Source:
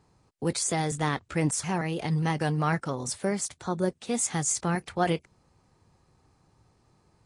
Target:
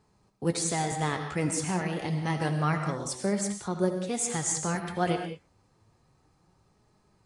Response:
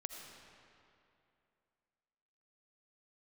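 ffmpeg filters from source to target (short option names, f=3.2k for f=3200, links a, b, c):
-filter_complex "[0:a]flanger=delay=4.7:depth=6.3:regen=64:speed=0.29:shape=sinusoidal[a];[1:a]atrim=start_sample=2205,afade=t=out:st=0.26:d=0.01,atrim=end_sample=11907[b];[a][b]afir=irnorm=-1:irlink=0,volume=6dB"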